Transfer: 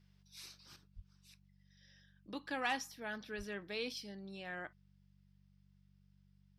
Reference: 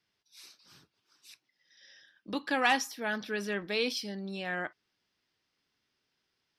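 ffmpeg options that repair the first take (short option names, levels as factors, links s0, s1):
-filter_complex "[0:a]bandreject=f=48:t=h:w=4,bandreject=f=96:t=h:w=4,bandreject=f=144:t=h:w=4,bandreject=f=192:t=h:w=4,asplit=3[s0][s1][s2];[s0]afade=t=out:st=0.95:d=0.02[s3];[s1]highpass=f=140:w=0.5412,highpass=f=140:w=1.3066,afade=t=in:st=0.95:d=0.02,afade=t=out:st=1.07:d=0.02[s4];[s2]afade=t=in:st=1.07:d=0.02[s5];[s3][s4][s5]amix=inputs=3:normalize=0,asplit=3[s6][s7][s8];[s6]afade=t=out:st=3.37:d=0.02[s9];[s7]highpass=f=140:w=0.5412,highpass=f=140:w=1.3066,afade=t=in:st=3.37:d=0.02,afade=t=out:st=3.49:d=0.02[s10];[s8]afade=t=in:st=3.49:d=0.02[s11];[s9][s10][s11]amix=inputs=3:normalize=0,asetnsamples=n=441:p=0,asendcmd='0.76 volume volume 10dB',volume=1"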